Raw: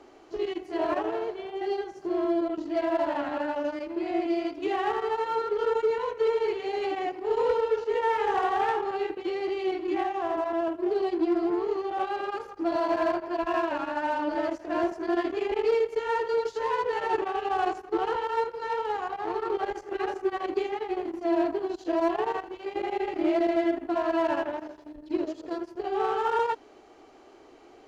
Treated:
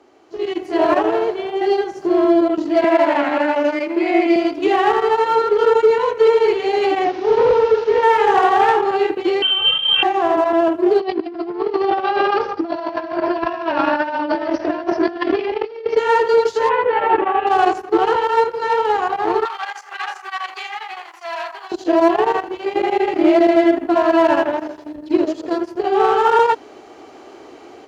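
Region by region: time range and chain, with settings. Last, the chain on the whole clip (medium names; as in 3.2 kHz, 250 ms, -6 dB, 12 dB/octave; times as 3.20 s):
2.84–4.36 s: high-pass 190 Hz 24 dB/octave + peaking EQ 2.2 kHz +9.5 dB 0.37 oct
7.04–8.03 s: one-bit delta coder 32 kbps, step -41.5 dBFS + distance through air 120 m
9.42–10.03 s: peaking EQ 1.1 kHz -6 dB 0.94 oct + frequency inversion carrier 3.5 kHz
11.00–15.97 s: steep low-pass 5.8 kHz 96 dB/octave + compressor with a negative ratio -32 dBFS, ratio -0.5 + delay 143 ms -22.5 dB
16.69–17.47 s: low-pass 2.9 kHz 24 dB/octave + comb 3.6 ms, depth 38%
19.45–21.72 s: high-pass 960 Hz 24 dB/octave + transformer saturation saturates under 1.5 kHz
whole clip: high-pass 85 Hz 12 dB/octave; level rider gain up to 13 dB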